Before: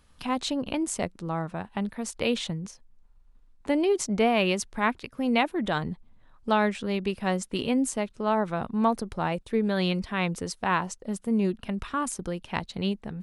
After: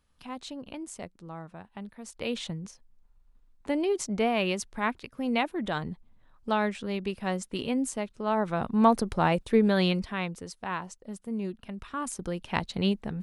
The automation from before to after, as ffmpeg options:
-af "volume=5.01,afade=t=in:st=2:d=0.5:silence=0.421697,afade=t=in:st=8.24:d=0.76:silence=0.421697,afade=t=out:st=9.56:d=0.78:silence=0.251189,afade=t=in:st=11.83:d=0.81:silence=0.316228"

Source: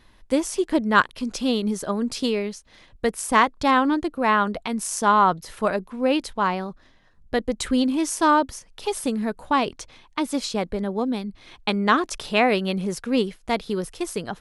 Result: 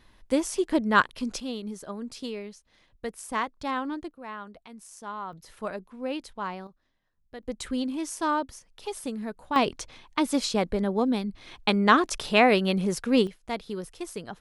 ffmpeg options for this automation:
-af "asetnsamples=n=441:p=0,asendcmd='1.4 volume volume -11.5dB;4.11 volume volume -19.5dB;5.33 volume volume -11dB;6.67 volume volume -19dB;7.43 volume volume -8.5dB;9.56 volume volume 0dB;13.27 volume volume -8dB',volume=0.708"

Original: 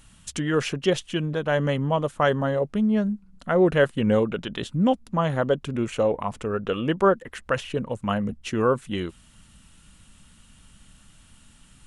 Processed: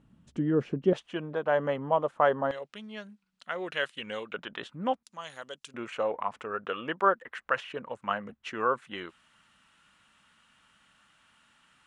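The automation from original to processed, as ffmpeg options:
-af "asetnsamples=n=441:p=0,asendcmd='0.93 bandpass f 830;2.51 bandpass f 3300;4.34 bandpass f 1300;5.03 bandpass f 6300;5.74 bandpass f 1400',bandpass=f=260:t=q:w=0.96:csg=0"

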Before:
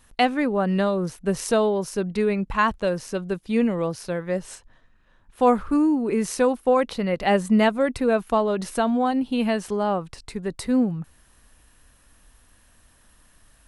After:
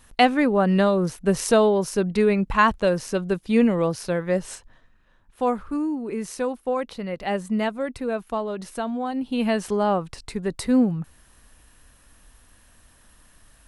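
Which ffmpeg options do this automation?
-af "volume=3.55,afade=t=out:st=4.5:d=1.04:silence=0.354813,afade=t=in:st=9.08:d=0.56:silence=0.398107"

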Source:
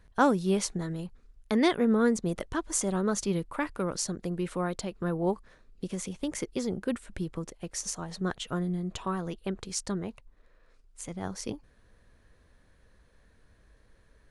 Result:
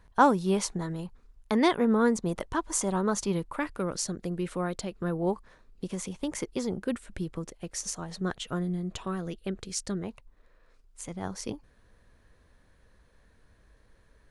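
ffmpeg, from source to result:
-af "asetnsamples=n=441:p=0,asendcmd='3.52 equalizer g -1.5;5.31 equalizer g 5;6.78 equalizer g -1;9.03 equalizer g -8;10.03 equalizer g 2',equalizer=f=950:t=o:w=0.6:g=7"

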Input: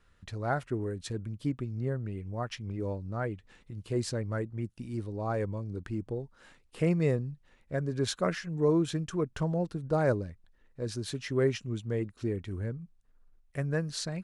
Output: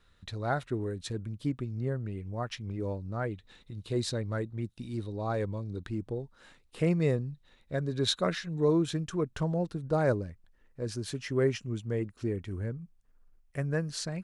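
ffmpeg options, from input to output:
-af "asetnsamples=n=441:p=0,asendcmd='0.97 equalizer g 4.5;3.31 equalizer g 14.5;5.89 equalizer g 5.5;7.31 equalizer g 13.5;8.76 equalizer g 3;10.14 equalizer g -4',equalizer=f=3800:t=o:w=0.22:g=11.5"

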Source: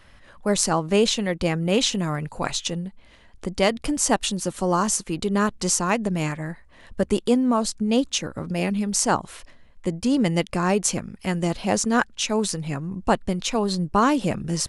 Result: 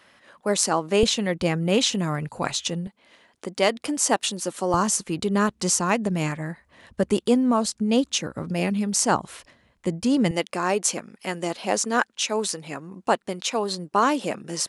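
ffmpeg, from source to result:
-af "asetnsamples=n=441:p=0,asendcmd='1.03 highpass f 81;2.87 highpass f 270;4.74 highpass f 84;10.31 highpass f 320',highpass=240"

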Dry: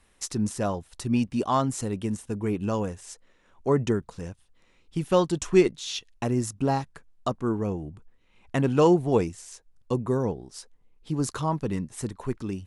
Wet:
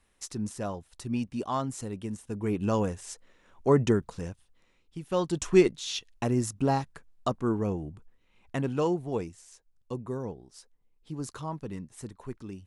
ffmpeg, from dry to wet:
-af "volume=3.98,afade=t=in:st=2.2:d=0.57:silence=0.421697,afade=t=out:st=4.11:d=0.92:silence=0.223872,afade=t=in:st=5.03:d=0.41:silence=0.281838,afade=t=out:st=7.81:d=1.11:silence=0.398107"

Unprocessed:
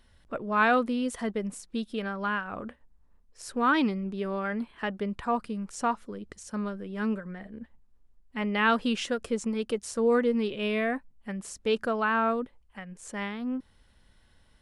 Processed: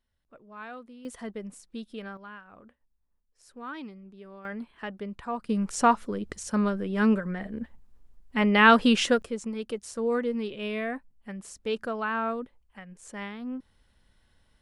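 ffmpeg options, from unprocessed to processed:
-af "asetnsamples=n=441:p=0,asendcmd='1.05 volume volume -6.5dB;2.17 volume volume -15dB;4.45 volume volume -5dB;5.49 volume volume 7dB;9.22 volume volume -3.5dB',volume=0.112"

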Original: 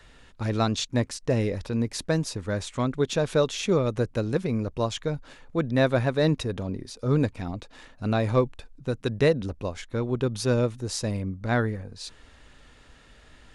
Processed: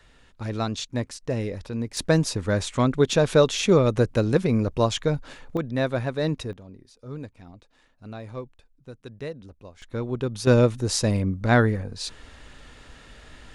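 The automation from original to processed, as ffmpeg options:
-af "asetnsamples=n=441:p=0,asendcmd='1.97 volume volume 5dB;5.57 volume volume -3dB;6.53 volume volume -13.5dB;9.82 volume volume -1.5dB;10.47 volume volume 6dB',volume=0.708"

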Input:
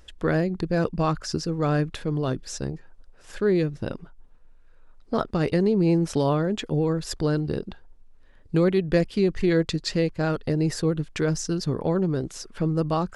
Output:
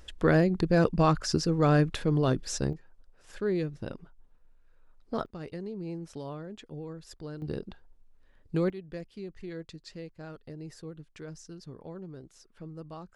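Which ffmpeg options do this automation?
-af "asetnsamples=n=441:p=0,asendcmd='2.73 volume volume -7.5dB;5.26 volume volume -17dB;7.42 volume volume -7dB;8.7 volume volume -19dB',volume=1.06"

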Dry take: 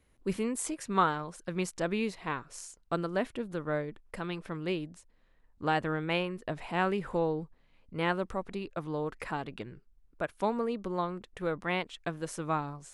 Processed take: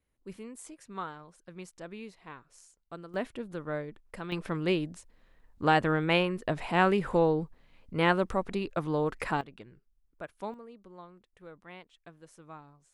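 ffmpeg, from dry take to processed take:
-af "asetnsamples=n=441:p=0,asendcmd='3.14 volume volume -2.5dB;4.32 volume volume 5dB;9.41 volume volume -8dB;10.54 volume volume -16.5dB',volume=0.251"

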